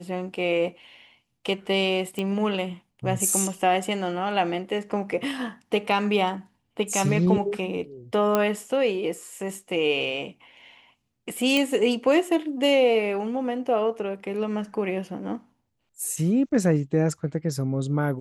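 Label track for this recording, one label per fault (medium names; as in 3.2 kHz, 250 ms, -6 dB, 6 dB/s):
2.190000	2.190000	pop -17 dBFS
8.350000	8.350000	pop -8 dBFS
11.570000	11.570000	pop -10 dBFS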